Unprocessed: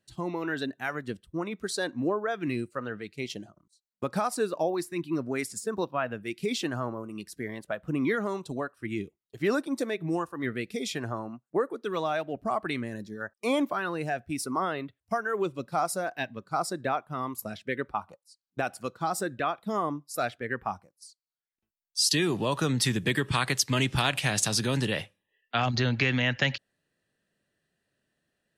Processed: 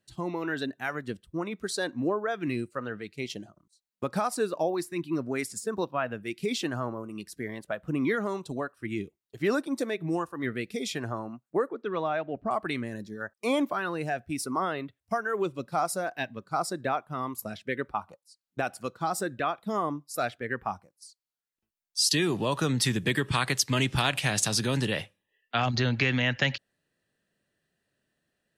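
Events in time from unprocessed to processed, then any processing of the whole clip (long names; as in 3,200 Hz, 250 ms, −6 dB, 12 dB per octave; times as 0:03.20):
0:11.69–0:12.51: low-pass filter 2,700 Hz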